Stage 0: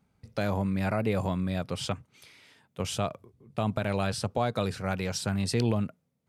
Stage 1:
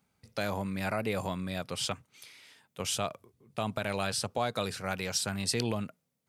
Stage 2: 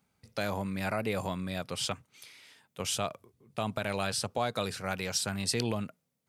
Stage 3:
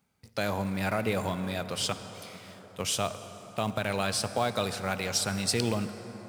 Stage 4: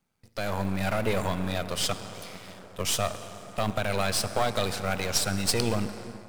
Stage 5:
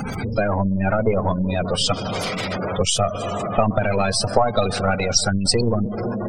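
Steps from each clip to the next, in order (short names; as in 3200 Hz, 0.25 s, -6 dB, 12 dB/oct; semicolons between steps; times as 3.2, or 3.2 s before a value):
tilt +2 dB/oct; gain -1.5 dB
nothing audible
in parallel at -9.5 dB: companded quantiser 4-bit; on the sum: reverb RT60 5.3 s, pre-delay 48 ms, DRR 10.5 dB
half-wave gain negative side -12 dB; AGC gain up to 6 dB
zero-crossing step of -21 dBFS; spectral gate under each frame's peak -15 dB strong; transient shaper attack +10 dB, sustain -10 dB; gain +2.5 dB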